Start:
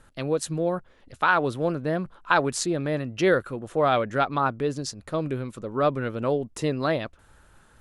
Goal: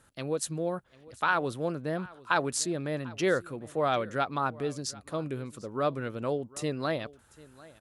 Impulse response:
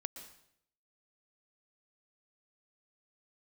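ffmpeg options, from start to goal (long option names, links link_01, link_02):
-af "highpass=55,highshelf=frequency=5900:gain=8.5,aecho=1:1:746:0.0841,volume=-6dB"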